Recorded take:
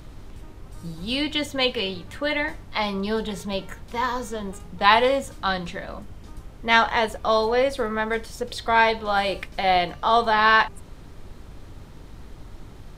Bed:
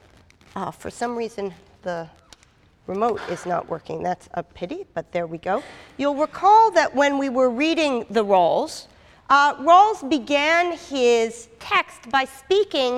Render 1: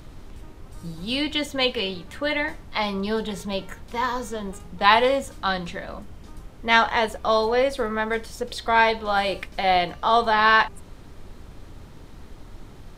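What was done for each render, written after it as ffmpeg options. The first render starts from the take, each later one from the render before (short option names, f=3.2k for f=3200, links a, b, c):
-af "bandreject=f=50:t=h:w=4,bandreject=f=100:t=h:w=4,bandreject=f=150:t=h:w=4"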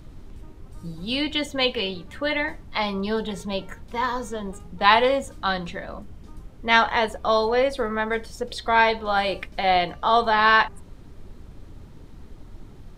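-af "afftdn=nr=6:nf=-44"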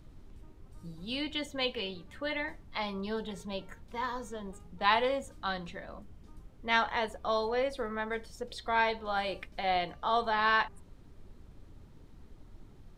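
-af "volume=-10dB"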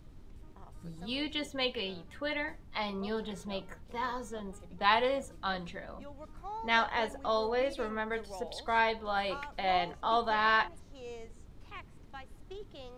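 -filter_complex "[1:a]volume=-28dB[a];[0:a][a]amix=inputs=2:normalize=0"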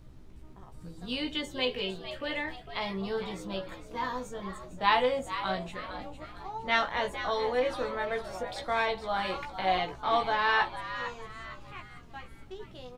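-filter_complex "[0:a]asplit=2[a][b];[b]adelay=16,volume=-4dB[c];[a][c]amix=inputs=2:normalize=0,asplit=2[d][e];[e]asplit=4[f][g][h][i];[f]adelay=455,afreqshift=120,volume=-11dB[j];[g]adelay=910,afreqshift=240,volume=-19dB[k];[h]adelay=1365,afreqshift=360,volume=-26.9dB[l];[i]adelay=1820,afreqshift=480,volume=-34.9dB[m];[j][k][l][m]amix=inputs=4:normalize=0[n];[d][n]amix=inputs=2:normalize=0"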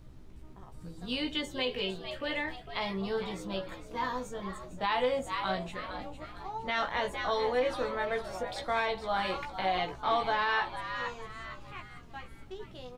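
-af "alimiter=limit=-18.5dB:level=0:latency=1:release=91"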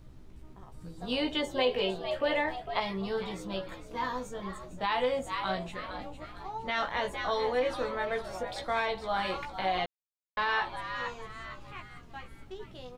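-filter_complex "[0:a]asettb=1/sr,asplit=3[a][b][c];[a]atrim=end=1.004[d];[b]atrim=start=1:end=2.8,asetpts=PTS-STARTPTS,afade=t=in:d=0.004:c=qsin,afade=t=out:st=1.796:d=0.004:c=qsin,equalizer=f=700:w=0.93:g=10[e];[c]atrim=start=2.796[f];[d][e]acrossfade=d=0.004:c1=hsin:c2=qsin[g];[g][f]acrossfade=d=0.004:c1=qsin:c2=hsin,asplit=3[h][i][j];[h]atrim=end=9.86,asetpts=PTS-STARTPTS,afade=t=out:st=9.856:d=0.004:c=hsin[k];[i]atrim=start=9.86:end=10.37,asetpts=PTS-STARTPTS,volume=0[l];[j]atrim=start=10.37,asetpts=PTS-STARTPTS,afade=t=in:d=0.004:c=hsin[m];[k][l][m]concat=n=3:v=0:a=1"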